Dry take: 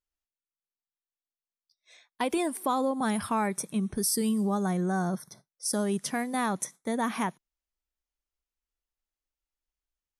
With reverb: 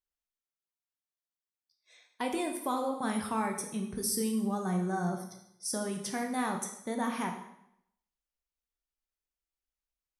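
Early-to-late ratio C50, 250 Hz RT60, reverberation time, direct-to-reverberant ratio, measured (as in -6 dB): 7.5 dB, 0.75 s, 0.75 s, 2.5 dB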